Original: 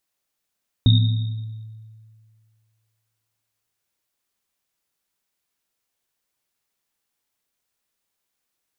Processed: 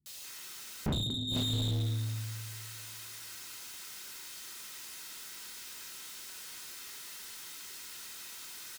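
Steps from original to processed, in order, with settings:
Butterworth band-reject 660 Hz, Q 1.2
low-shelf EQ 160 Hz +5 dB
notch comb filter 570 Hz
three-band delay without the direct sound lows, highs, mids 60/240 ms, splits 160/2,600 Hz
gate with flip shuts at −18 dBFS, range −36 dB
high-shelf EQ 2,100 Hz +11 dB
rectangular room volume 270 cubic metres, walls furnished, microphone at 1.1 metres
mid-hump overdrive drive 47 dB, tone 2,900 Hz, clips at −17 dBFS
level −6 dB

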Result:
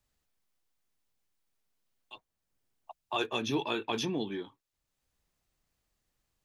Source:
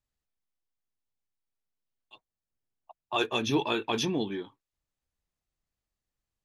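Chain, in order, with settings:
multiband upward and downward compressor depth 40%
level −3.5 dB

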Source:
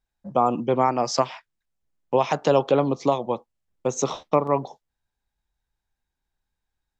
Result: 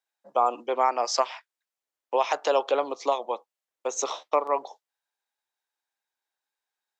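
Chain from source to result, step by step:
Bessel high-pass filter 610 Hz, order 4

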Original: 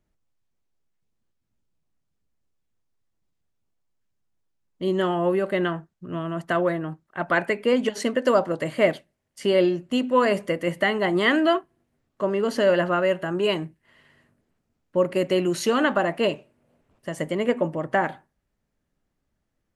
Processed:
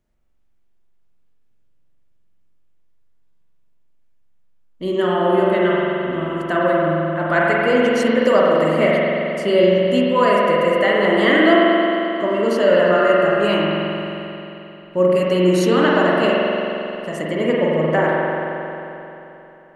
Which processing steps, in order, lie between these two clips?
spring reverb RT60 3.2 s, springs 44 ms, chirp 75 ms, DRR −5 dB
level +1 dB

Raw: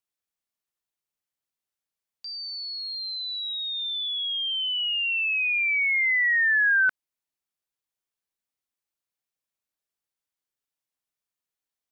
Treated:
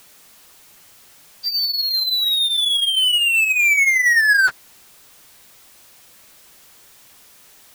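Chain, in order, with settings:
time stretch by phase vocoder 0.65×
power curve on the samples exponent 0.5
level +7 dB

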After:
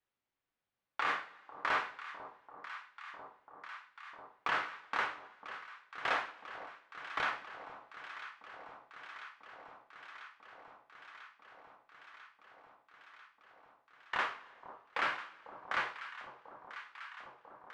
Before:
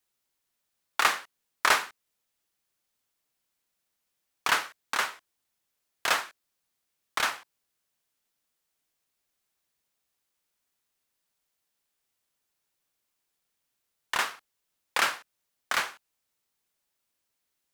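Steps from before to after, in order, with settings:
low-pass filter 2,400 Hz 12 dB per octave
brickwall limiter −18 dBFS, peak gain reduction 9.5 dB
on a send: delay that swaps between a low-pass and a high-pass 497 ms, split 1,000 Hz, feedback 88%, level −11.5 dB
on the sum: coupled-rooms reverb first 0.35 s, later 1.7 s, from −18 dB, DRR 5 dB
level −4 dB

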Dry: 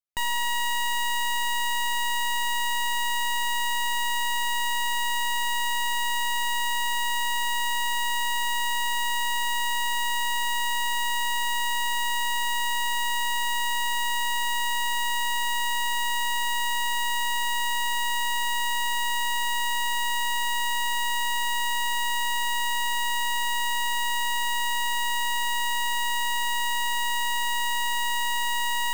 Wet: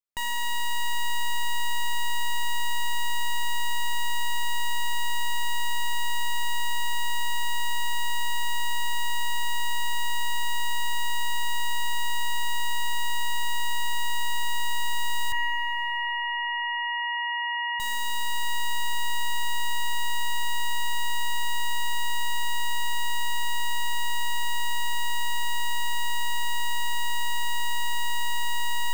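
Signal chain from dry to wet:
0:15.32–0:17.80: three sine waves on the formant tracks
four-comb reverb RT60 2.7 s, combs from 33 ms, DRR 11.5 dB
level −3 dB

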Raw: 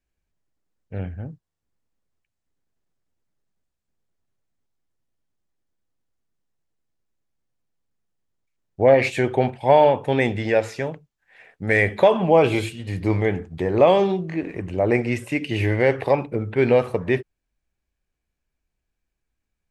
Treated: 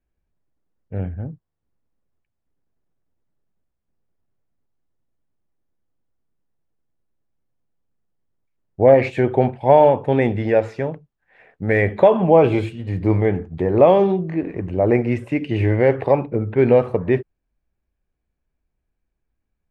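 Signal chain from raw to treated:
low-pass filter 1,000 Hz 6 dB per octave
level +4 dB

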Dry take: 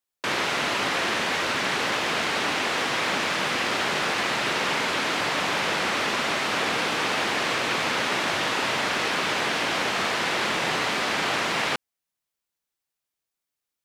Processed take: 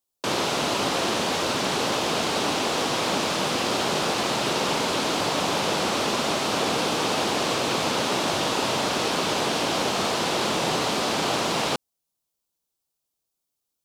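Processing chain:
parametric band 1,900 Hz −12.5 dB 1.2 octaves
level +5 dB

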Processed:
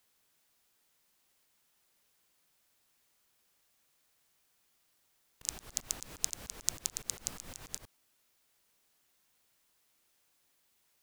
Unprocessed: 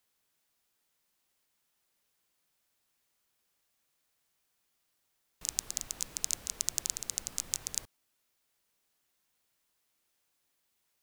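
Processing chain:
volume swells 119 ms
level +4.5 dB

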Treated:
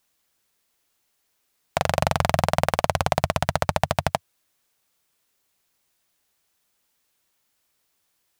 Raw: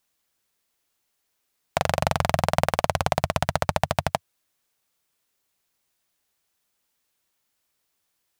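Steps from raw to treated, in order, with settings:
brickwall limiter −5.5 dBFS, peak gain reduction 4 dB
level +3.5 dB

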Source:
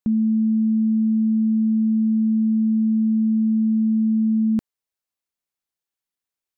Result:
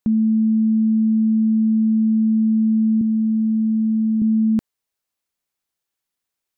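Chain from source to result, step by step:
0:03.01–0:04.22: Bessel high-pass filter 200 Hz
in parallel at −1 dB: brickwall limiter −25.5 dBFS, peak gain reduction 10 dB

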